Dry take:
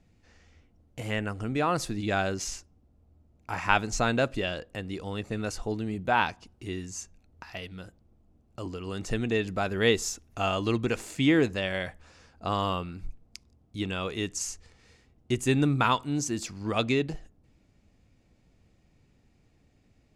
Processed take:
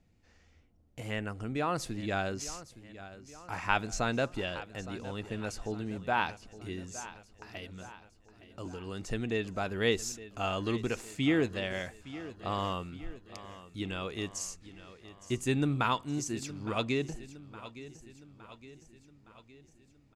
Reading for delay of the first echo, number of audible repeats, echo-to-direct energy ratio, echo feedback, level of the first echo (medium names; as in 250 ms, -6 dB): 864 ms, 4, -14.0 dB, 54%, -15.5 dB